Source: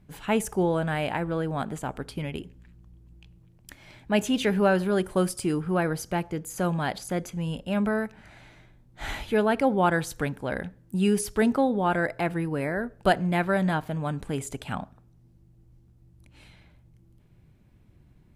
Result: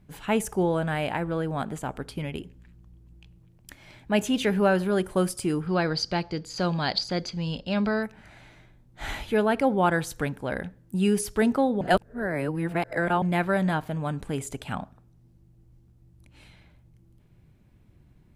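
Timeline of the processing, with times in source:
0:05.67–0:08.03: low-pass with resonance 4,600 Hz, resonance Q 10
0:11.81–0:13.22: reverse

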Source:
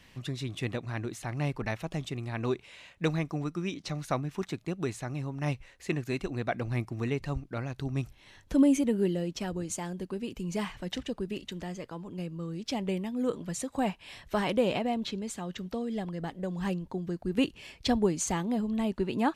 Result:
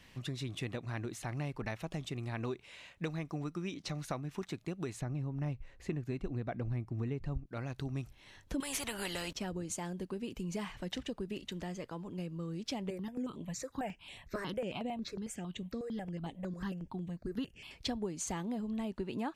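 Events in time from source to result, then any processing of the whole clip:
0:05.01–0:07.46: spectral tilt −2.5 dB per octave
0:08.60–0:09.33: every bin compressed towards the loudest bin 4 to 1
0:12.90–0:17.71: step-sequenced phaser 11 Hz 850–5,100 Hz
whole clip: downward compressor 4 to 1, threshold −33 dBFS; level −2 dB

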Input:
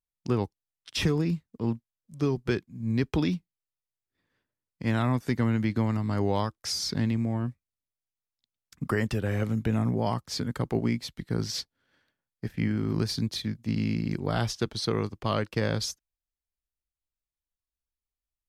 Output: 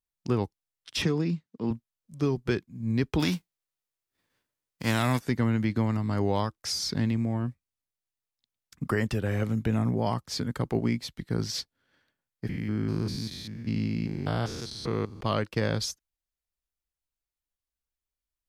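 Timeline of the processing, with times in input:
0:01.02–0:01.71: Chebyshev band-pass filter 170–5,700 Hz
0:03.19–0:05.19: spectral envelope flattened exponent 0.6
0:12.49–0:15.21: spectrum averaged block by block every 200 ms

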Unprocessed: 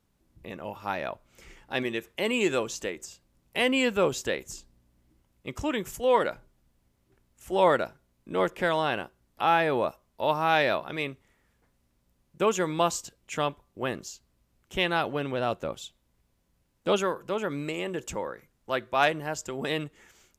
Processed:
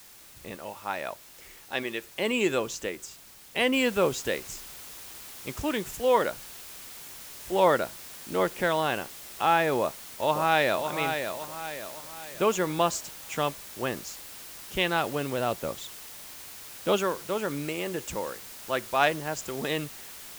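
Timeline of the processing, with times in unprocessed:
0:00.55–0:02.04: low-shelf EQ 290 Hz −9 dB
0:03.73: noise floor change −51 dB −44 dB
0:09.79–0:10.89: delay throw 560 ms, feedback 45%, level −7 dB

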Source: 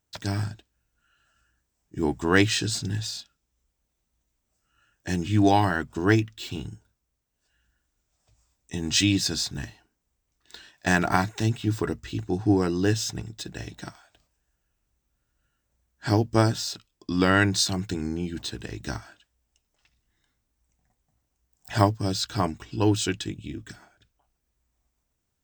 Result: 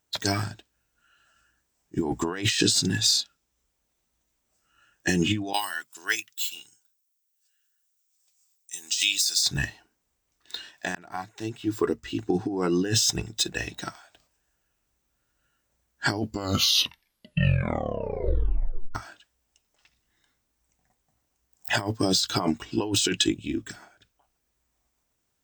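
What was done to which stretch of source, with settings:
0:05.53–0:09.43: first difference
0:10.95–0:12.91: fade in
0:16.10: tape stop 2.85 s
whole clip: noise reduction from a noise print of the clip's start 9 dB; low-shelf EQ 180 Hz −9.5 dB; compressor whose output falls as the input rises −33 dBFS, ratio −1; level +8 dB

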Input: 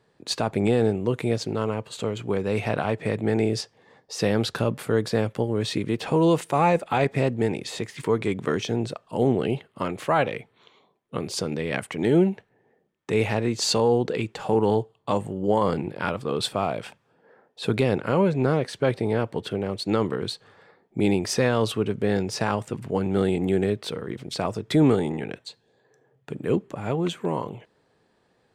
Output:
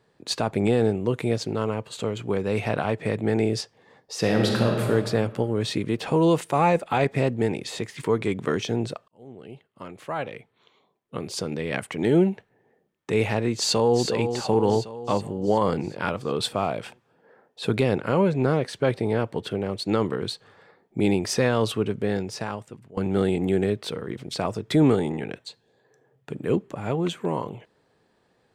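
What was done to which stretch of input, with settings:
0:04.19–0:04.87: thrown reverb, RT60 2 s, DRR 0.5 dB
0:09.08–0:11.92: fade in
0:13.56–0:14.04: delay throw 370 ms, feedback 60%, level −7.5 dB
0:21.83–0:22.97: fade out, to −21 dB

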